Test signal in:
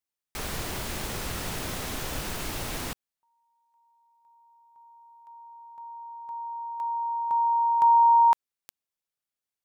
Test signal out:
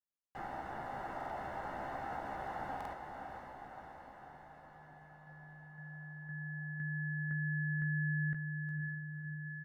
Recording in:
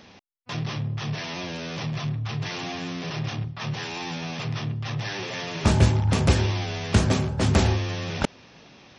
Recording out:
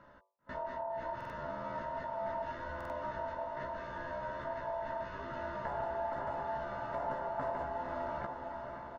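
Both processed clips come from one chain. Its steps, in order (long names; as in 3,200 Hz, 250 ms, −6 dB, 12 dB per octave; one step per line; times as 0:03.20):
parametric band 350 Hz −11.5 dB 0.2 octaves
mains-hum notches 50/100/150/200/250/300/350/400 Hz
brickwall limiter −17 dBFS
downward compressor 4 to 1, threshold −30 dBFS
Savitzky-Golay smoothing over 65 samples
ring modulation 780 Hz
double-tracking delay 15 ms −6 dB
feedback delay with all-pass diffusion 527 ms, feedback 66%, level −6 dB
buffer that repeats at 0:01.16/0:02.76, samples 2,048, times 2
level −4 dB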